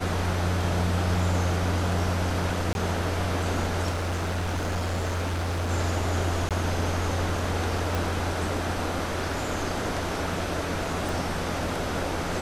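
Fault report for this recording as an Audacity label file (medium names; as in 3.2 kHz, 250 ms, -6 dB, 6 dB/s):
2.730000	2.750000	dropout 21 ms
3.900000	5.710000	clipped -24.5 dBFS
6.490000	6.510000	dropout 17 ms
7.950000	7.950000	pop
11.090000	11.090000	pop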